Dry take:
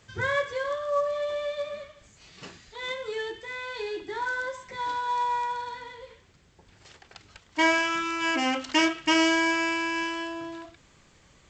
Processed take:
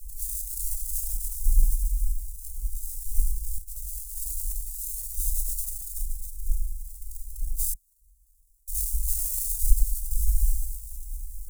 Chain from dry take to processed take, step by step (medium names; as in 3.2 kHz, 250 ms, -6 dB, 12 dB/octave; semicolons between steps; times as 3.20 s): spectral levelling over time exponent 0.6; wind noise 84 Hz -24 dBFS; 9.71–10.11 s: pre-emphasis filter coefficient 0.8; two-band feedback delay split 580 Hz, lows 104 ms, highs 282 ms, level -4.5 dB; 7.73–8.68 s: inverted gate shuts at -13 dBFS, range -37 dB; sample-rate reducer 2.8 kHz, jitter 20%; inverse Chebyshev band-stop 230–1800 Hz, stop band 80 dB; tilt shelf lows -4.5 dB, about 1.4 kHz; 3.58–4.03 s: compressor with a negative ratio -38 dBFS, ratio -0.5; Shepard-style flanger rising 0.41 Hz; trim +6 dB